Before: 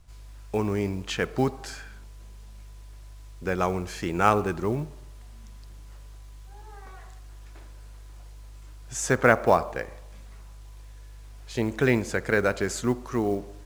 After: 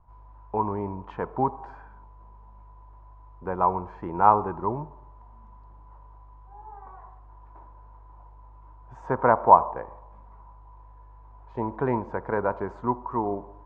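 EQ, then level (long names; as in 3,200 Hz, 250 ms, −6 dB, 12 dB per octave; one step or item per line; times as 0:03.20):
low-pass with resonance 960 Hz, resonance Q 10
−5.0 dB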